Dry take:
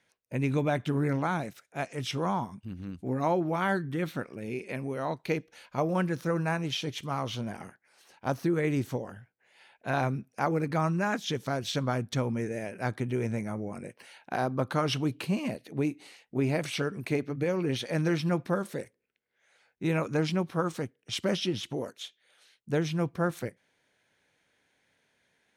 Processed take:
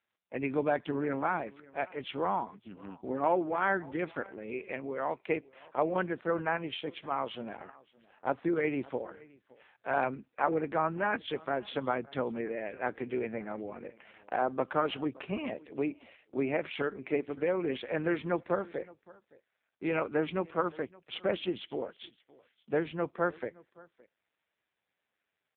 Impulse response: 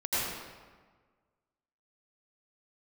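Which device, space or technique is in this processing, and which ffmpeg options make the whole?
satellite phone: -filter_complex "[0:a]agate=range=-12dB:threshold=-60dB:ratio=16:detection=peak,asplit=3[a][b][c];[a]afade=t=out:st=3.02:d=0.02[d];[b]lowpass=10k,afade=t=in:st=3.02:d=0.02,afade=t=out:st=3.62:d=0.02[e];[c]afade=t=in:st=3.62:d=0.02[f];[d][e][f]amix=inputs=3:normalize=0,highpass=330,lowpass=3k,aecho=1:1:568:0.0708,volume=1.5dB" -ar 8000 -c:a libopencore_amrnb -b:a 5900

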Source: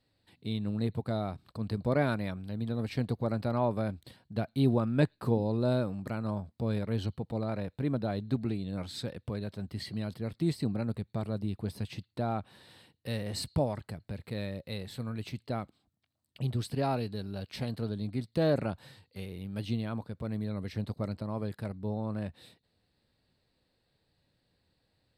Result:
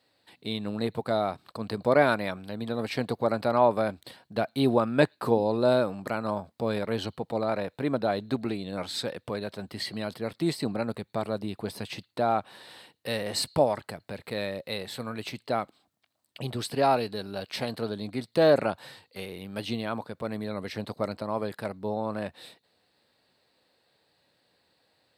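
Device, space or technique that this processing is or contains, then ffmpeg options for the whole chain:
filter by subtraction: -filter_complex "[0:a]asplit=2[a][b];[b]lowpass=730,volume=-1[c];[a][c]amix=inputs=2:normalize=0,volume=8dB"

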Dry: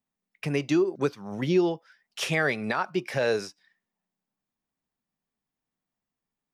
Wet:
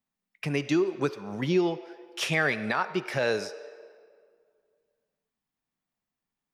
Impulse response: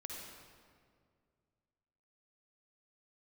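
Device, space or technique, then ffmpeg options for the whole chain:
filtered reverb send: -filter_complex "[0:a]asplit=2[a][b];[b]highpass=f=420:w=0.5412,highpass=f=420:w=1.3066,lowpass=6.3k[c];[1:a]atrim=start_sample=2205[d];[c][d]afir=irnorm=-1:irlink=0,volume=-7.5dB[e];[a][e]amix=inputs=2:normalize=0,volume=-1dB"

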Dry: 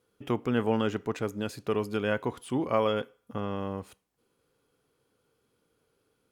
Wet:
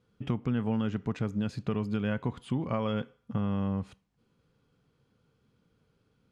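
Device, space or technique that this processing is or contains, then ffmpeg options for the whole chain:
jukebox: -filter_complex "[0:a]asettb=1/sr,asplit=3[a][b][c];[a]atrim=end=1.624[d];[b]atrim=start=1.62:end=2.79,asetpts=PTS-STARTPTS,afade=t=in:d=0.004:c=qsin,afade=t=out:st=1.166:d=0.004:c=qsin,bandreject=f=5.6k:w=8[e];[c]atrim=start=2.786[f];[d][e]acrossfade=d=0.004:c1=hsin:c2=qsin[g];[g][f]acrossfade=d=0.004:c1=qsin:c2=hsin,lowpass=5.6k,lowshelf=f=260:t=q:w=1.5:g=8.5,acompressor=threshold=-27dB:ratio=4"

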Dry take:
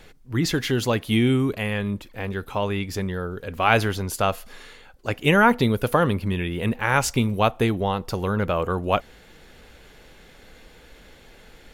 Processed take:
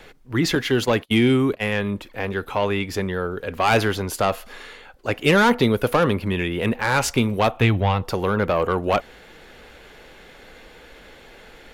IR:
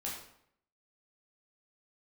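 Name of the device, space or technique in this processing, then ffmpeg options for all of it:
one-band saturation: -filter_complex "[0:a]bass=f=250:g=-7,treble=f=4k:g=-6,asettb=1/sr,asplit=3[a][b][c];[a]atrim=end=0.554[d];[b]atrim=start=0.55:end=1.73,asetpts=PTS-STARTPTS,afade=t=in:d=0.004:c=qsin,afade=t=out:st=1.176:d=0.004:c=qsin,agate=range=-35dB:threshold=-29dB:ratio=16:detection=peak[e];[c]atrim=start=1.726[f];[d][e]acrossfade=d=0.004:c1=hsin:c2=qsin[g];[g][f]acrossfade=d=0.004:c1=qsin:c2=hsin,acrossover=split=350|3700[h][i][j];[i]asoftclip=type=tanh:threshold=-20dB[k];[h][k][j]amix=inputs=3:normalize=0,asettb=1/sr,asplit=3[l][m][n];[l]atrim=end=7.574[o];[m]atrim=start=7.57:end=8.03,asetpts=PTS-STARTPTS,afade=t=in:d=0.004:c=qsin,afade=t=out:st=0.456:d=0.004:c=qsin,equalizer=f=100:t=o:w=0.67:g=11,equalizer=f=400:t=o:w=0.67:g=-7,equalizer=f=2.5k:t=o:w=0.67:g=5,equalizer=f=10k:t=o:w=0.67:g=-9[p];[n]atrim=start=8.026[q];[o][p]acrossfade=d=0.004:c1=hsin:c2=qsin[r];[r][q]acrossfade=d=0.004:c1=qsin:c2=hsin,volume=6dB"

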